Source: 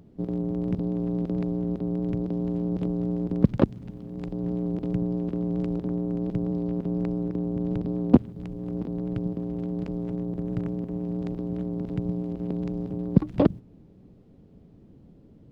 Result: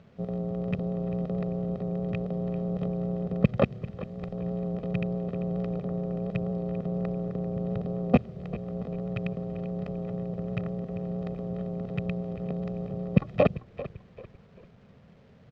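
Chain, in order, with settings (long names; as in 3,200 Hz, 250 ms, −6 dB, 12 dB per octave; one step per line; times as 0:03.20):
loose part that buzzes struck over −21 dBFS, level −22 dBFS
high-pass filter 210 Hz 6 dB per octave
comb filter 1.6 ms, depth 97%
bit reduction 10 bits
high-frequency loss of the air 180 metres
echo with shifted repeats 392 ms, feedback 35%, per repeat −32 Hz, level −15 dB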